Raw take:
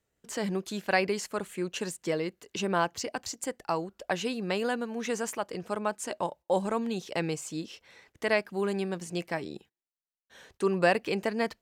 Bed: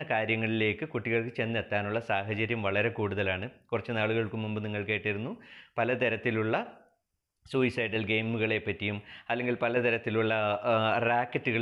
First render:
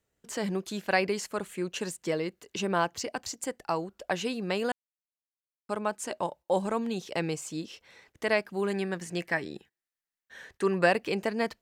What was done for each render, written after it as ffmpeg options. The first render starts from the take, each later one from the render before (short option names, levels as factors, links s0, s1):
-filter_complex "[0:a]asettb=1/sr,asplit=3[s0][s1][s2];[s0]atrim=end=8.704[s3];[s1]atrim=start=8.7:end=10.86,asetpts=PTS-STARTPTS,afade=t=in:d=0.004:c=qsin,afade=t=out:st=2.156:d=0.004:c=qsin,equalizer=f=1800:t=o:w=0.47:g=10[s4];[s2]atrim=start=10.856[s5];[s3][s4]acrossfade=d=0.004:c1=hsin:c2=qsin[s6];[s6][s5]acrossfade=d=0.004:c1=qsin:c2=hsin,asplit=3[s7][s8][s9];[s7]atrim=end=4.72,asetpts=PTS-STARTPTS,afade=t=out:st=4.716:d=0.004:c=hsin[s10];[s8]atrim=start=4.72:end=5.69,asetpts=PTS-STARTPTS,volume=0[s11];[s9]atrim=start=5.69,asetpts=PTS-STARTPTS,afade=t=in:d=0.004:c=hsin[s12];[s10][s11][s12]concat=n=3:v=0:a=1"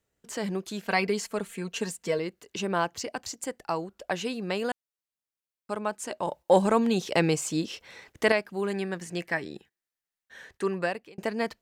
-filter_complex "[0:a]asettb=1/sr,asplit=3[s0][s1][s2];[s0]atrim=end=0.824[s3];[s1]atrim=start=0.82:end=2.19,asetpts=PTS-STARTPTS,afade=t=in:d=0.004:c=qsin,afade=t=out:st=1.366:d=0.004:c=qsin,aecho=1:1:4.4:0.65,atrim=end_sample=60417[s4];[s2]atrim=start=2.186[s5];[s3][s4]acrossfade=d=0.004:c1=hsin:c2=qsin[s6];[s6][s5]acrossfade=d=0.004:c1=qsin:c2=hsin,asettb=1/sr,asplit=3[s7][s8][s9];[s7]atrim=end=6.274[s10];[s8]atrim=start=6.27:end=8.32,asetpts=PTS-STARTPTS,afade=t=in:d=0.004:c=qsin,afade=t=out:st=2.046:d=0.004:c=qsin,acontrast=89[s11];[s9]atrim=start=8.316[s12];[s10][s11]acrossfade=d=0.004:c1=hsin:c2=qsin[s13];[s13][s12]acrossfade=d=0.004:c1=qsin:c2=hsin,asplit=2[s14][s15];[s14]atrim=end=11.18,asetpts=PTS-STARTPTS,afade=t=out:st=10.56:d=0.62[s16];[s15]atrim=start=11.18,asetpts=PTS-STARTPTS,afade=t=in:d=0.004:c=hsin[s17];[s16][s17]concat=n=2:v=0:a=1"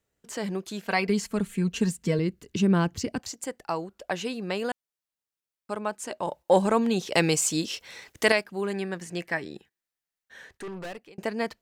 -filter_complex "[0:a]asplit=3[s0][s1][s2];[s0]afade=t=out:st=1.08:d=0.02[s3];[s1]asubboost=boost=10.5:cutoff=240,afade=t=in:st=1.08:d=0.02,afade=t=out:st=3.18:d=0.02[s4];[s2]afade=t=in:st=3.18:d=0.02[s5];[s3][s4][s5]amix=inputs=3:normalize=0,asettb=1/sr,asplit=3[s6][s7][s8];[s6]atrim=end=7.134[s9];[s7]atrim=start=7.13:end=8.44,asetpts=PTS-STARTPTS,afade=t=in:d=0.004:c=qsin,afade=t=out:st=1.306:d=0.004:c=qsin,highshelf=f=2900:g=9[s10];[s8]atrim=start=8.436[s11];[s9][s10]acrossfade=d=0.004:c1=hsin:c2=qsin[s12];[s12][s11]acrossfade=d=0.004:c1=qsin:c2=hsin,asettb=1/sr,asplit=3[s13][s14][s15];[s13]atrim=end=10.544[s16];[s14]atrim=start=10.54:end=11.11,asetpts=PTS-STARTPTS,afade=t=in:d=0.004:c=qsin,afade=t=out:st=0.566:d=0.004:c=qsin,aeval=exprs='(tanh(50.1*val(0)+0.3)-tanh(0.3))/50.1':c=same[s17];[s15]atrim=start=11.106[s18];[s16][s17]acrossfade=d=0.004:c1=hsin:c2=qsin[s19];[s19][s18]acrossfade=d=0.004:c1=qsin:c2=hsin"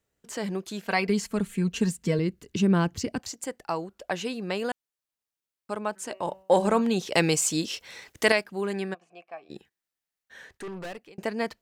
-filter_complex "[0:a]asplit=3[s0][s1][s2];[s0]afade=t=out:st=5.95:d=0.02[s3];[s1]bandreject=f=190.4:t=h:w=4,bandreject=f=380.8:t=h:w=4,bandreject=f=571.2:t=h:w=4,bandreject=f=761.6:t=h:w=4,bandreject=f=952:t=h:w=4,bandreject=f=1142.4:t=h:w=4,bandreject=f=1332.8:t=h:w=4,bandreject=f=1523.2:t=h:w=4,bandreject=f=1713.6:t=h:w=4,bandreject=f=1904:t=h:w=4,bandreject=f=2094.4:t=h:w=4,bandreject=f=2284.8:t=h:w=4,bandreject=f=2475.2:t=h:w=4,bandreject=f=2665.6:t=h:w=4,bandreject=f=2856:t=h:w=4,bandreject=f=3046.4:t=h:w=4,afade=t=in:st=5.95:d=0.02,afade=t=out:st=6.81:d=0.02[s4];[s2]afade=t=in:st=6.81:d=0.02[s5];[s3][s4][s5]amix=inputs=3:normalize=0,asplit=3[s6][s7][s8];[s6]afade=t=out:st=8.93:d=0.02[s9];[s7]asplit=3[s10][s11][s12];[s10]bandpass=f=730:t=q:w=8,volume=1[s13];[s11]bandpass=f=1090:t=q:w=8,volume=0.501[s14];[s12]bandpass=f=2440:t=q:w=8,volume=0.355[s15];[s13][s14][s15]amix=inputs=3:normalize=0,afade=t=in:st=8.93:d=0.02,afade=t=out:st=9.49:d=0.02[s16];[s8]afade=t=in:st=9.49:d=0.02[s17];[s9][s16][s17]amix=inputs=3:normalize=0"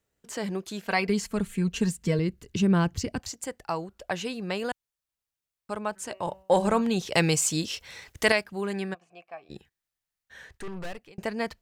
-af "asubboost=boost=3.5:cutoff=130"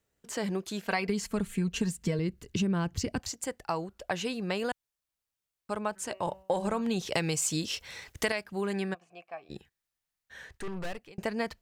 -af "acompressor=threshold=0.0562:ratio=12"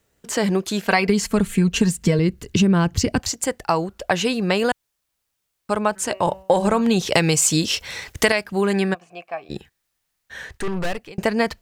-af "volume=3.98"